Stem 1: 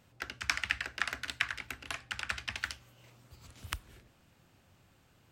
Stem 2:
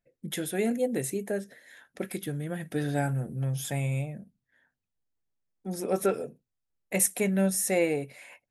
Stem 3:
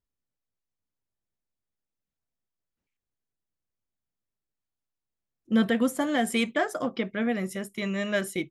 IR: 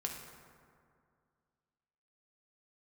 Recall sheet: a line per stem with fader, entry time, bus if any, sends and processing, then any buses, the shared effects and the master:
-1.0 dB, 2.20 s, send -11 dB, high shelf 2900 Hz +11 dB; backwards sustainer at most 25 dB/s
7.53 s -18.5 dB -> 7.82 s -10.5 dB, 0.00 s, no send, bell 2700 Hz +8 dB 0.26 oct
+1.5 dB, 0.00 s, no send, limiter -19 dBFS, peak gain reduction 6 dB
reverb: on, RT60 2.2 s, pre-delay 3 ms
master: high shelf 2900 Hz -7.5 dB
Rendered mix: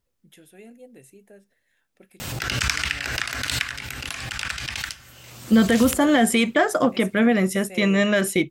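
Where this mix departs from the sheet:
stem 3 +1.5 dB -> +10.5 dB; master: missing high shelf 2900 Hz -7.5 dB

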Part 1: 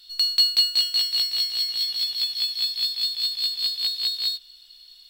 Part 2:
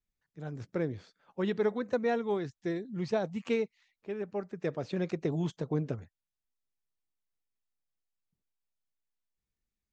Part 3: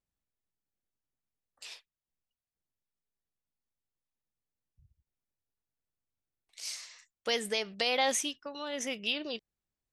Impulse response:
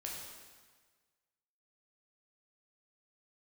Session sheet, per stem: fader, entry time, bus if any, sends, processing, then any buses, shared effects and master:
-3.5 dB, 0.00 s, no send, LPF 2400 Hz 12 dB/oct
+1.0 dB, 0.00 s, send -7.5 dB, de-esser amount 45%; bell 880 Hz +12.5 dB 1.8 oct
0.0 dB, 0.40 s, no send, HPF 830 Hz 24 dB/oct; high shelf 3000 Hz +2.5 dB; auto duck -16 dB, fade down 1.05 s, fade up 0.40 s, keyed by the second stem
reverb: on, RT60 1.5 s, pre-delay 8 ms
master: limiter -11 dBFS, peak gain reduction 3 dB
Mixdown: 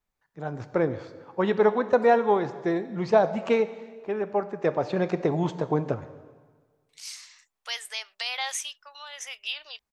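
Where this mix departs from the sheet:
stem 1: muted; stem 3: missing high shelf 3000 Hz +2.5 dB; master: missing limiter -11 dBFS, peak gain reduction 3 dB

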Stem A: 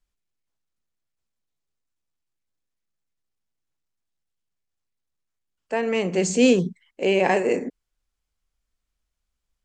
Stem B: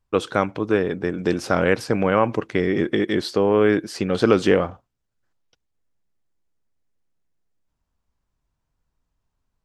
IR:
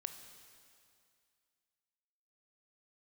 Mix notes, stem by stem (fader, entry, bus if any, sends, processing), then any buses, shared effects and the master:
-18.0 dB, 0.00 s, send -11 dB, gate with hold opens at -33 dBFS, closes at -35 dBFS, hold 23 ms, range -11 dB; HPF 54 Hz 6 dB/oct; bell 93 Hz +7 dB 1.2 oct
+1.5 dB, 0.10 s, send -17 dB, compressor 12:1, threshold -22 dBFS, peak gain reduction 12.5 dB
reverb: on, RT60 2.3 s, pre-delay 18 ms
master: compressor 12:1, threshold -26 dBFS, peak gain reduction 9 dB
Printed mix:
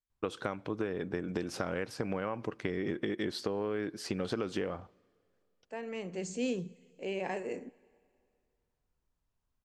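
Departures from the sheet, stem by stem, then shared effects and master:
stem A: missing gate with hold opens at -33 dBFS, closes at -35 dBFS, hold 23 ms, range -11 dB; stem B +1.5 dB -> -8.0 dB

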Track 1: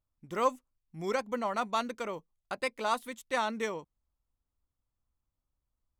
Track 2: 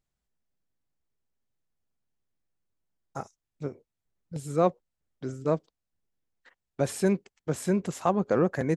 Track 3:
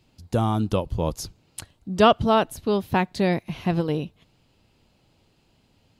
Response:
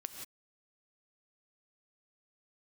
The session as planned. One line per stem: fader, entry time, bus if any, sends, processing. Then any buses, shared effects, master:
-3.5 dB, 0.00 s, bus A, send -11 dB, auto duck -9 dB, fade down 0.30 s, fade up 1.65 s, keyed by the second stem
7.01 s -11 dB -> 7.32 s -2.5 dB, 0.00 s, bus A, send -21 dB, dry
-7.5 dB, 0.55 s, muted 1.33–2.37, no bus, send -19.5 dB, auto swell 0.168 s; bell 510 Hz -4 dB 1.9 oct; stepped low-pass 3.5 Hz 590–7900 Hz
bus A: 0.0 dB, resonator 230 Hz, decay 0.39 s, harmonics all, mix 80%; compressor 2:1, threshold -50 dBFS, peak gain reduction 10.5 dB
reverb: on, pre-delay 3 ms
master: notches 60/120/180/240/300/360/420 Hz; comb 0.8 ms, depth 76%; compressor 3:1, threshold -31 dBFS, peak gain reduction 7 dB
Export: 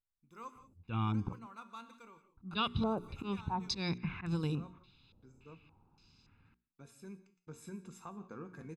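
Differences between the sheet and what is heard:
stem 1 -3.5 dB -> -14.0 dB; stem 2 -11.0 dB -> -17.5 dB

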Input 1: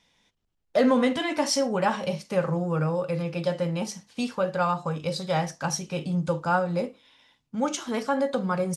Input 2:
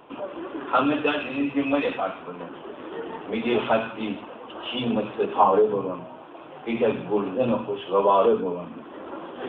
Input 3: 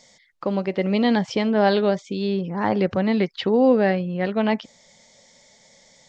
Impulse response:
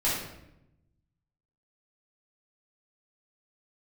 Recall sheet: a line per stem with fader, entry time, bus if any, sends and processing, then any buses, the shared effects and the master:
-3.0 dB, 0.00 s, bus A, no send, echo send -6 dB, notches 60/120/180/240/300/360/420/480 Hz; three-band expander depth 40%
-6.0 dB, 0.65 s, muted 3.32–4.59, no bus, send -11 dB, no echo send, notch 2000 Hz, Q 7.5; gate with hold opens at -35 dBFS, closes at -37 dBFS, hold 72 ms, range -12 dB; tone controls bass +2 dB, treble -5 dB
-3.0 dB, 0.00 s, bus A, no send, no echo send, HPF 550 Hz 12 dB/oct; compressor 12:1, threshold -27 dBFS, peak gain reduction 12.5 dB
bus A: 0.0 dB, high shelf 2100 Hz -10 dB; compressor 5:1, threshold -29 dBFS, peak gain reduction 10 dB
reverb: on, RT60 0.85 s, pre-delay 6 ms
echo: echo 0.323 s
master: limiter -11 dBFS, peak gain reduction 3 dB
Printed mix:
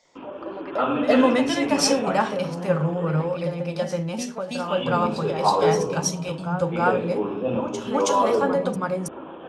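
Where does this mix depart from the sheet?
stem 1 -3.0 dB -> +7.5 dB; stem 2: entry 0.65 s -> 0.05 s; master: missing limiter -11 dBFS, peak gain reduction 3 dB

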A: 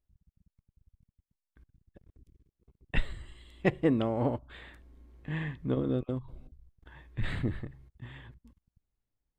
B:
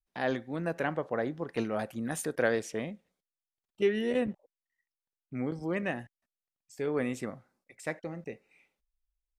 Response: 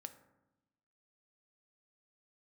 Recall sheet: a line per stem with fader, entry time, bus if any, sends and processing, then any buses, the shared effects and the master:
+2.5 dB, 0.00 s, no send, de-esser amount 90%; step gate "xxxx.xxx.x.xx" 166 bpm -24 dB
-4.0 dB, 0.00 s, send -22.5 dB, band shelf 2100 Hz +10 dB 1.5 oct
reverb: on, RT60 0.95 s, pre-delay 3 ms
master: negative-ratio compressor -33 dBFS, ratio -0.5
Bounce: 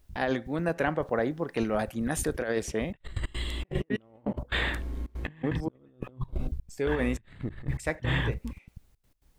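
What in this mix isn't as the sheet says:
stem A +2.5 dB -> +13.0 dB; stem B: missing band shelf 2100 Hz +10 dB 1.5 oct

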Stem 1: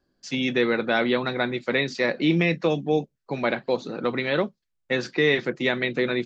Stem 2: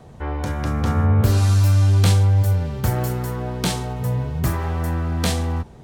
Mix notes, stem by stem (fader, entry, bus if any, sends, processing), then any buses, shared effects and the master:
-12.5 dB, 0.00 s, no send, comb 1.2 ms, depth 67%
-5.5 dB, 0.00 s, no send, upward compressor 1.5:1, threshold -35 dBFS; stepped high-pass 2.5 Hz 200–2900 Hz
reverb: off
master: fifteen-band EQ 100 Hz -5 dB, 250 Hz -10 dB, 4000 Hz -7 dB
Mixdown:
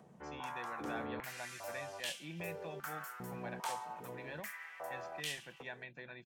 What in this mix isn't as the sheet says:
stem 1 -12.5 dB -> -22.0 dB; stem 2 -5.5 dB -> -17.0 dB

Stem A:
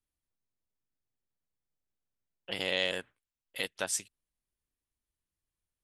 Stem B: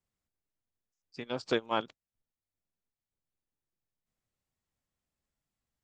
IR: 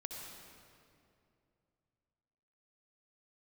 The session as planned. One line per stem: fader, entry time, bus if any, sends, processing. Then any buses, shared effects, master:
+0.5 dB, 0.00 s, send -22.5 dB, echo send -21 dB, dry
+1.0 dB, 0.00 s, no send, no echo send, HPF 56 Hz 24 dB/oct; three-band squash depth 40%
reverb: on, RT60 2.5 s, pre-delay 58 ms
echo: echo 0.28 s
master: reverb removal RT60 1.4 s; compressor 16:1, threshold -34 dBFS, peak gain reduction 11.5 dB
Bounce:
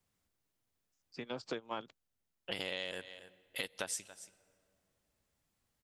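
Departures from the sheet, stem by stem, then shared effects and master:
stem B +1.0 dB -> -5.5 dB; master: missing reverb removal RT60 1.4 s

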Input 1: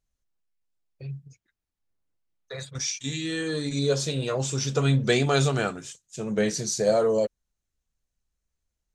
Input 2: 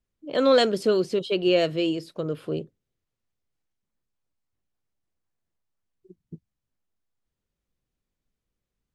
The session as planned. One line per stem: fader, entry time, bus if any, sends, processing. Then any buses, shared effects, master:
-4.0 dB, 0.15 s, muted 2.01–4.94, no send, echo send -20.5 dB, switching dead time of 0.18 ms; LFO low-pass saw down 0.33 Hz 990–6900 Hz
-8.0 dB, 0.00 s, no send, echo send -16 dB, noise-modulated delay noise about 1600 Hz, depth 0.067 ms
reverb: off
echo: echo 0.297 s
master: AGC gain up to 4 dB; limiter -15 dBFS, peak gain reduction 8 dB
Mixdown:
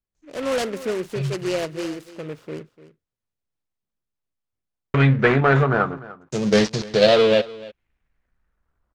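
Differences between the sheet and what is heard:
stem 1 -4.0 dB -> +5.5 dB; master: missing limiter -15 dBFS, peak gain reduction 8 dB

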